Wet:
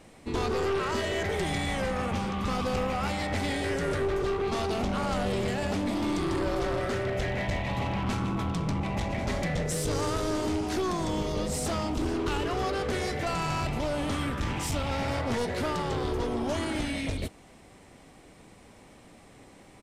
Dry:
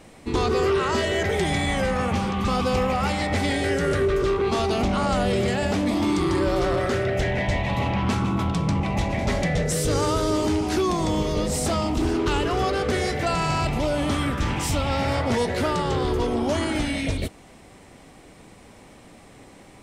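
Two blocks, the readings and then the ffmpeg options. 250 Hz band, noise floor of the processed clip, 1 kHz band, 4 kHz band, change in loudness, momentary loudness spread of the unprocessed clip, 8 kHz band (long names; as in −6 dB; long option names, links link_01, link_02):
−6.5 dB, −53 dBFS, −6.0 dB, −6.0 dB, −6.5 dB, 2 LU, −6.0 dB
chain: -af "aeval=exprs='clip(val(0),-1,0.0668)':channel_layout=same,aresample=32000,aresample=44100,volume=-5dB"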